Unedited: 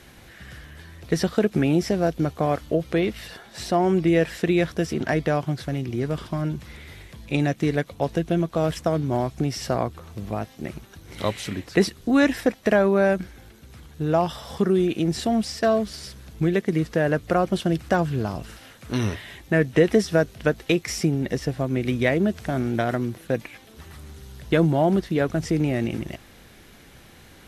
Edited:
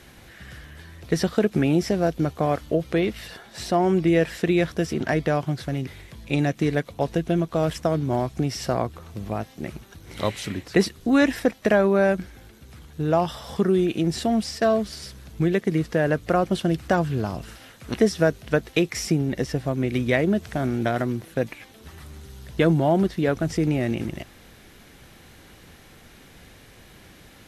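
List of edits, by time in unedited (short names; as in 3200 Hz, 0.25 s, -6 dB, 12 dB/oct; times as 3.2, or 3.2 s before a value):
5.87–6.88 cut
18.95–19.87 cut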